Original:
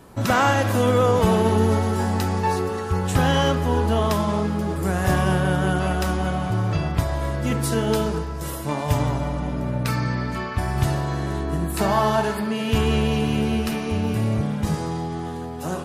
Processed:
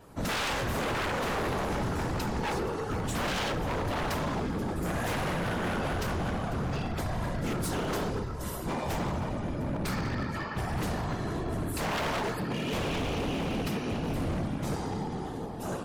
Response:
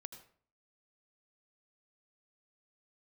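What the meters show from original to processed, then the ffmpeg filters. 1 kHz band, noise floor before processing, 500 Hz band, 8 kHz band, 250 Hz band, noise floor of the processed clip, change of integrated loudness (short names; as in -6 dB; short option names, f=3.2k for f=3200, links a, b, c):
-9.0 dB, -30 dBFS, -10.0 dB, -7.0 dB, -9.5 dB, -36 dBFS, -9.5 dB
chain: -af "afftfilt=real='hypot(re,im)*cos(2*PI*random(0))':imag='hypot(re,im)*sin(2*PI*random(1))':win_size=512:overlap=0.75,adynamicequalizer=threshold=0.00141:dfrequency=10000:dqfactor=1.6:tfrequency=10000:tqfactor=1.6:attack=5:release=100:ratio=0.375:range=2.5:mode=cutabove:tftype=bell,aeval=exprs='0.0531*(abs(mod(val(0)/0.0531+3,4)-2)-1)':c=same"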